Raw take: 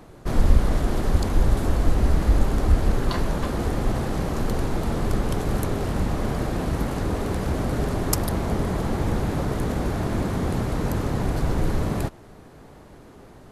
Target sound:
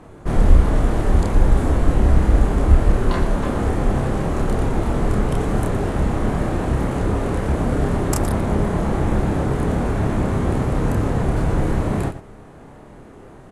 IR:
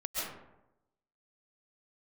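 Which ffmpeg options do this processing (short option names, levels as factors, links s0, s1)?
-filter_complex "[0:a]lowpass=f=10000:w=0.5412,lowpass=f=10000:w=1.3066,equalizer=f=4800:t=o:w=1.1:g=-9,asplit=2[s0][s1];[s1]aecho=0:1:29.15|116.6:0.794|0.251[s2];[s0][s2]amix=inputs=2:normalize=0,volume=1.33"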